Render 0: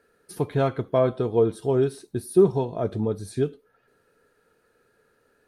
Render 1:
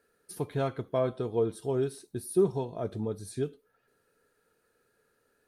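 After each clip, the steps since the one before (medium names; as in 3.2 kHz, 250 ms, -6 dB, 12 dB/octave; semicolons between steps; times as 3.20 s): treble shelf 5 kHz +7.5 dB; trim -7.5 dB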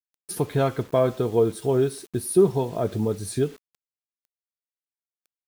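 in parallel at -1 dB: compression 8:1, threshold -38 dBFS, peak gain reduction 18.5 dB; on the sum: bit crusher 9-bit; trim +6 dB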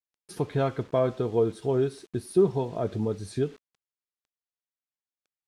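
distance through air 70 m; trim -3.5 dB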